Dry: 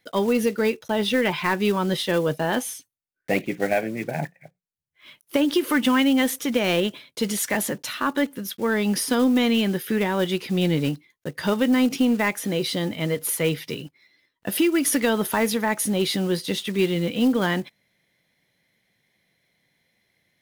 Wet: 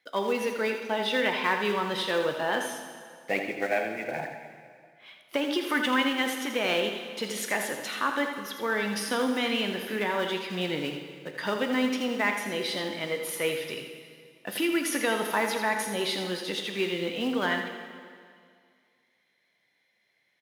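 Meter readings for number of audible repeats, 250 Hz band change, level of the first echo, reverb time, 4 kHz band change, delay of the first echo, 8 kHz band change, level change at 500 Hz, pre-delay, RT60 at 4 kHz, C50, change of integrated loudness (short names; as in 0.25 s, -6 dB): 1, -9.5 dB, -8.5 dB, 2.1 s, -2.5 dB, 82 ms, -8.0 dB, -5.0 dB, 6 ms, 2.0 s, 4.5 dB, -5.5 dB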